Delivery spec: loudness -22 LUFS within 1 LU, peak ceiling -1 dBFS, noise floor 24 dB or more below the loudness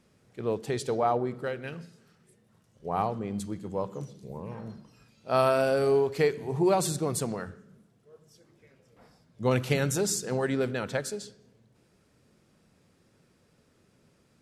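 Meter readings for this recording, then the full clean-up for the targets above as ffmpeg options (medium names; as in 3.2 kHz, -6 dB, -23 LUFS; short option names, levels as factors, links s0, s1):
loudness -29.0 LUFS; peak level -12.0 dBFS; loudness target -22.0 LUFS
-> -af "volume=2.24"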